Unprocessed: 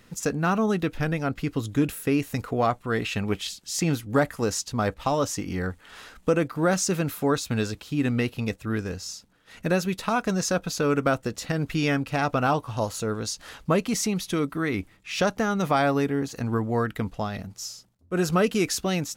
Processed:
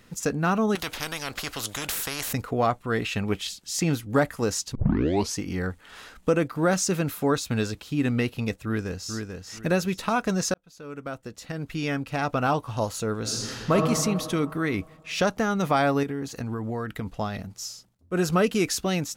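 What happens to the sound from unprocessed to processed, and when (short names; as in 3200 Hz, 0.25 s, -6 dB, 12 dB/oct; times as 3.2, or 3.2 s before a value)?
0.75–2.33 spectral compressor 4:1
4.75 tape start 0.62 s
8.64–9.14 echo throw 0.44 s, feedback 25%, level -5.5 dB
10.54–12.69 fade in
13.21–13.72 reverb throw, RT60 2.4 s, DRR -4 dB
16.03–17.11 compressor, threshold -26 dBFS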